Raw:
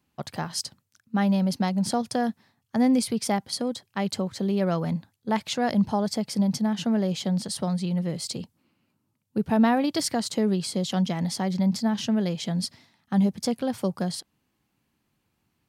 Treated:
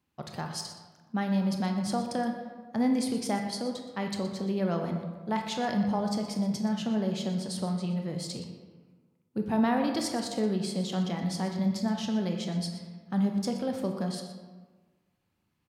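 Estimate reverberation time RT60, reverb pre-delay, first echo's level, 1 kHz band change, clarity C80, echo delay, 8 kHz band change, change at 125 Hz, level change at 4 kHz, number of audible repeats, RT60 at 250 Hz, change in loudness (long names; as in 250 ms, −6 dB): 1.4 s, 20 ms, −14.0 dB, −4.0 dB, 7.0 dB, 121 ms, −7.0 dB, −4.5 dB, −5.5 dB, 1, 1.5 s, −4.5 dB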